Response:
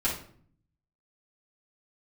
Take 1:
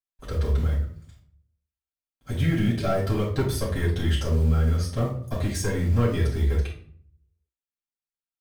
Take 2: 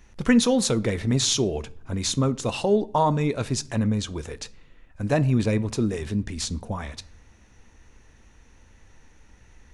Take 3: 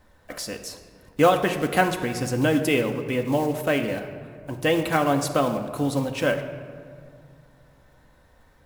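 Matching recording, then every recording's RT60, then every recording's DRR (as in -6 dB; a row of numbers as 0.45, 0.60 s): 1; 0.55 s, not exponential, 2.3 s; -8.0, 15.0, 4.5 dB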